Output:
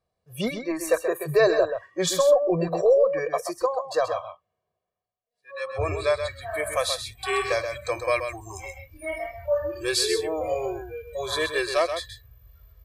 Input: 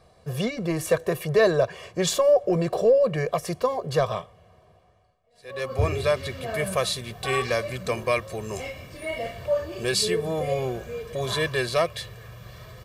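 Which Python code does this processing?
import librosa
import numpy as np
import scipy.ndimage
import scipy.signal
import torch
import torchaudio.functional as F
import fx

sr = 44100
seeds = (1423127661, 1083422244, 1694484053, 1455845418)

y = fx.noise_reduce_blind(x, sr, reduce_db=24)
y = fx.low_shelf(y, sr, hz=130.0, db=-11.0, at=(3.65, 5.89))
y = y + 10.0 ** (-8.0 / 20.0) * np.pad(y, (int(130 * sr / 1000.0), 0))[:len(y)]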